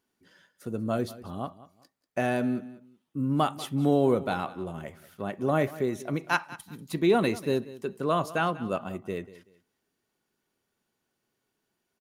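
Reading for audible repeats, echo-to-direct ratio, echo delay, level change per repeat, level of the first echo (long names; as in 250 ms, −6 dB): 2, −17.0 dB, 190 ms, −11.5 dB, −17.5 dB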